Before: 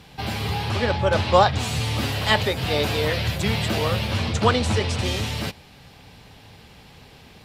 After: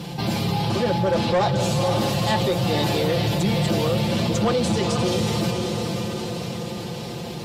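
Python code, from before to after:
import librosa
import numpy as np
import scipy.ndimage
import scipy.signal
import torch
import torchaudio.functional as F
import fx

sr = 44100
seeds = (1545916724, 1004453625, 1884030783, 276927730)

y = scipy.signal.sosfilt(scipy.signal.butter(2, 110.0, 'highpass', fs=sr, output='sos'), x)
y = fx.peak_eq(y, sr, hz=1800.0, db=-12.0, octaves=2.0)
y = y + 0.73 * np.pad(y, (int(5.8 * sr / 1000.0), 0))[:len(y)]
y = fx.echo_diffused(y, sr, ms=513, feedback_pct=48, wet_db=-8)
y = 10.0 ** (-17.0 / 20.0) * np.tanh(y / 10.0 ** (-17.0 / 20.0))
y = fx.high_shelf(y, sr, hz=6400.0, db=-7.0)
y = fx.env_flatten(y, sr, amount_pct=50)
y = y * librosa.db_to_amplitude(1.5)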